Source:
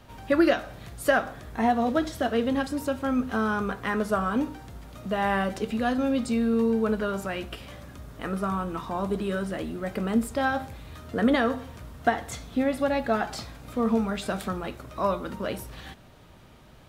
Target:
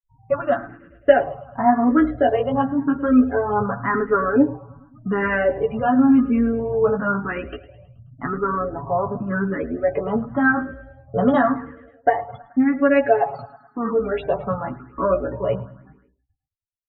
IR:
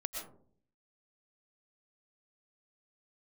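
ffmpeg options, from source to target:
-filter_complex "[0:a]lowpass=1800,agate=range=-9dB:threshold=-39dB:ratio=16:detection=peak,asplit=3[link_01][link_02][link_03];[link_01]afade=type=out:start_time=11.8:duration=0.02[link_04];[link_02]lowshelf=frequency=230:gain=-10.5,afade=type=in:start_time=11.8:duration=0.02,afade=type=out:start_time=14:duration=0.02[link_05];[link_03]afade=type=in:start_time=14:duration=0.02[link_06];[link_04][link_05][link_06]amix=inputs=3:normalize=0,afftfilt=real='re*gte(hypot(re,im),0.0112)':imag='im*gte(hypot(re,im),0.0112)':win_size=1024:overlap=0.75,aecho=1:1:7.1:0.5,dynaudnorm=framelen=150:gausssize=9:maxgain=6dB,flanger=delay=7.1:depth=9.4:regen=2:speed=0.23:shape=sinusoidal,aecho=1:1:107|214|321|428|535:0.106|0.0604|0.0344|0.0196|0.0112,asplit=2[link_07][link_08];[link_08]afreqshift=0.92[link_09];[link_07][link_09]amix=inputs=2:normalize=1,volume=7dB"

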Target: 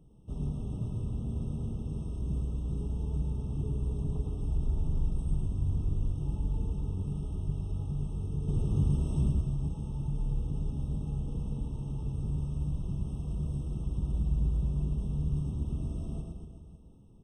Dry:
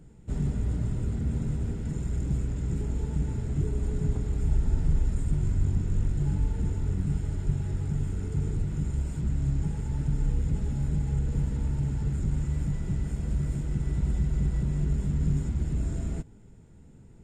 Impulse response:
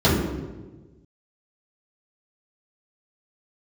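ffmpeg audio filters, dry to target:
-filter_complex "[0:a]asettb=1/sr,asplit=3[link_01][link_02][link_03];[link_01]atrim=end=8.484[link_04];[link_02]atrim=start=8.48:end=9.31,asetpts=PTS-STARTPTS,afade=type=in:duration=0.004:curve=qsin,afade=type=out:start_time=0.826:duration=0.004:curve=qsin,acontrast=90[link_05];[link_03]atrim=start=9.306[link_06];[link_04][link_05]acrossfade=duration=0.004:curve1=hsin:curve2=qsin[link_07];[link_07][link_06]acrossfade=duration=0.004:curve1=qsin:curve2=hsin,aecho=1:1:110|236.5|382|549.3|741.7:0.631|0.398|0.251|0.158|0.1,afftfilt=real='re*eq(mod(floor(b*sr/1024/1300),2),0)':imag='im*eq(mod(floor(b*sr/1024/1300),2),0)':win_size=1024:overlap=0.75,volume=-7dB"

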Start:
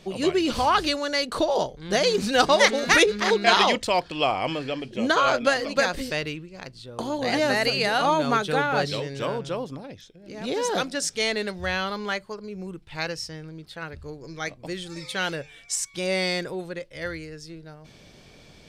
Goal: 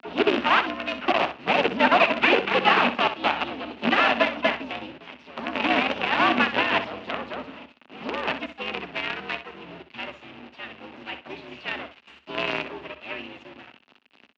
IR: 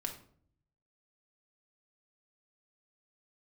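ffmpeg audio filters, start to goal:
-filter_complex "[0:a]acrossover=split=1700[link_01][link_02];[link_02]acompressor=threshold=-39dB:ratio=8[link_03];[link_01][link_03]amix=inputs=2:normalize=0,asplit=4[link_04][link_05][link_06][link_07];[link_05]asetrate=33038,aresample=44100,atempo=1.33484,volume=-15dB[link_08];[link_06]asetrate=37084,aresample=44100,atempo=1.18921,volume=-9dB[link_09];[link_07]asetrate=66075,aresample=44100,atempo=0.66742,volume=-9dB[link_10];[link_04][link_08][link_09][link_10]amix=inputs=4:normalize=0,acrusher=bits=4:dc=4:mix=0:aa=0.000001,asetrate=57330,aresample=44100,afreqshift=-73,highpass=230,equalizer=frequency=240:width_type=q:width=4:gain=8,equalizer=frequency=500:width_type=q:width=4:gain=-4,equalizer=frequency=2700:width_type=q:width=4:gain=9,lowpass=frequency=3400:width=0.5412,lowpass=frequency=3400:width=1.3066,aecho=1:1:63|126:0.282|0.0507"

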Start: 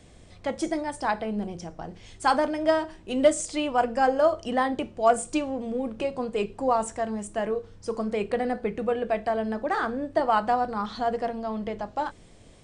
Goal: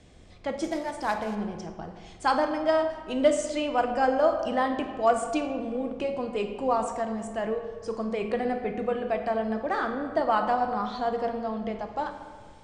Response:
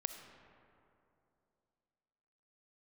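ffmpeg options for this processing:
-filter_complex "[0:a]asettb=1/sr,asplit=3[link_01][link_02][link_03];[link_01]atrim=end=0.644[link_04];[link_02]atrim=start=0.64:end=1.35,asetpts=PTS-STARTPTS,afade=type=in:duration=0.004:curve=qsin,afade=type=out:start_time=0.706:duration=0.004:curve=qsin,acrusher=bits=4:mode=log:mix=0:aa=0.000001[link_05];[link_03]atrim=start=1.346[link_06];[link_04][link_05]acrossfade=duration=0.004:curve1=hsin:curve2=qsin[link_07];[link_07][link_06]acrossfade=duration=0.004:curve1=qsin:curve2=hsin,lowpass=7200[link_08];[1:a]atrim=start_sample=2205,asetrate=79380,aresample=44100[link_09];[link_08][link_09]afir=irnorm=-1:irlink=0,volume=4.5dB"

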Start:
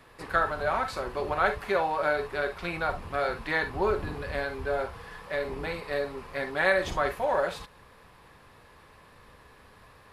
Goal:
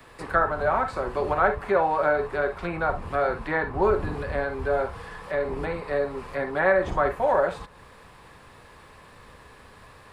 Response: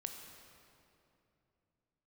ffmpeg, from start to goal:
-filter_complex "[0:a]acrossover=split=260|520|1800[link_01][link_02][link_03][link_04];[link_04]acompressor=threshold=-53dB:ratio=6[link_05];[link_01][link_02][link_03][link_05]amix=inputs=4:normalize=0,aexciter=amount=1.2:drive=3.9:freq=7400,volume=5dB"

